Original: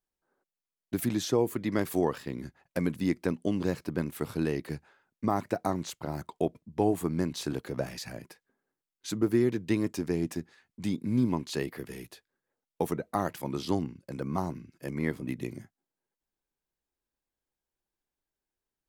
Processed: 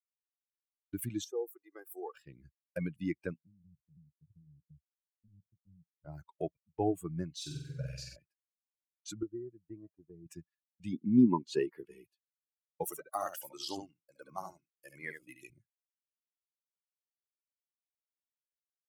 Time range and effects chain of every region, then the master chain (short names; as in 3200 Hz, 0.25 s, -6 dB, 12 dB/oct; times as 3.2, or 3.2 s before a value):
1.24–2.15 HPF 560 Hz + bell 3000 Hz -13.5 dB 2.8 oct + comb 2.5 ms, depth 67%
3.4–6.05 inverse Chebyshev low-pass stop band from 1300 Hz, stop band 80 dB + compressor 10:1, threshold -38 dBFS
7.36–8.16 bell 770 Hz -12 dB 1.3 oct + flutter echo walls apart 8 m, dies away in 1.3 s
9.23–10.26 LPF 1100 Hz + resonator 640 Hz, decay 0.18 s
10.93–12.05 low shelf 270 Hz -5 dB + small resonant body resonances 240/370/920 Hz, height 10 dB, ringing for 25 ms
12.84–15.5 tone controls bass -11 dB, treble +9 dB + echo 71 ms -4 dB
whole clip: per-bin expansion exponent 2; expander -56 dBFS; gain -2 dB